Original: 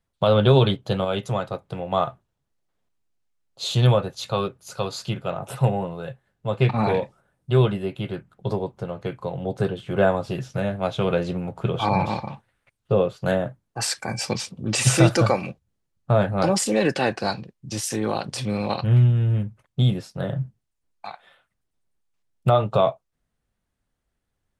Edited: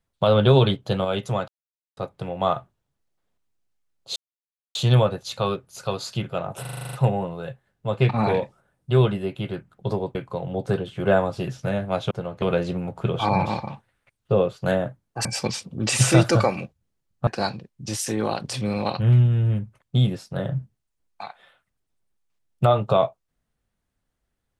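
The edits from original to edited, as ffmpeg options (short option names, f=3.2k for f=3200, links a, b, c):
-filter_complex "[0:a]asplit=16[a][b][c][d][e][f][g][h][i][j][k][l][m][n][o][p];[a]atrim=end=1.48,asetpts=PTS-STARTPTS,afade=t=out:st=1.476:d=0.004:c=hsin,apad=pad_dur=0.49[q];[b]atrim=start=1.48:end=3.67,asetpts=PTS-STARTPTS,afade=t=in:d=0.004:c=hsin,afade=t=out:st=2.186:d=0.004:c=hsin,apad=pad_dur=0.59[r];[c]atrim=start=3.67:end=5.572,asetpts=PTS-STARTPTS,afade=t=in:d=0.004:c=hsin[s];[d]atrim=start=5.528:end=5.572[t];[e]atrim=start=5.528:end=5.572[u];[f]atrim=start=5.528:end=5.572[v];[g]atrim=start=5.528:end=5.572[w];[h]atrim=start=5.528:end=5.572[x];[i]atrim=start=5.528:end=5.572[y];[j]atrim=start=5.528:end=5.572[z];[k]atrim=start=5.528:end=8.752[aa];[l]atrim=start=9.058:end=11.022[ab];[m]atrim=start=8.748:end=9.062[ac];[n]atrim=start=11.018:end=13.852[ad];[o]atrim=start=14.108:end=16.132[ae];[p]atrim=start=17.108[af];[q][r][s]concat=n=3:v=0:a=1[ag];[ag][t]acrossfade=d=0.004:c1=hsin:c2=hsin[ah];[ah][u]acrossfade=d=0.004:c1=hsin:c2=hsin[ai];[ai][v]acrossfade=d=0.004:c1=hsin:c2=hsin[aj];[aj][w]acrossfade=d=0.004:c1=hsin:c2=hsin[ak];[ak][x]acrossfade=d=0.004:c1=hsin:c2=hsin[al];[al][y]acrossfade=d=0.004:c1=hsin:c2=hsin[am];[am][z]acrossfade=d=0.004:c1=hsin:c2=hsin[an];[an][aa]acrossfade=d=0.004:c1=hsin:c2=hsin[ao];[ao][ab]acrossfade=d=0.004:c1=hsin:c2=hsin[ap];[ap][ac]acrossfade=d=0.004:c1=hsin:c2=hsin[aq];[aq][ad]acrossfade=d=0.004:c1=hsin:c2=hsin[ar];[ar][ae]acrossfade=d=0.004:c1=hsin:c2=hsin[as];[as][af]acrossfade=d=0.004:c1=hsin:c2=hsin"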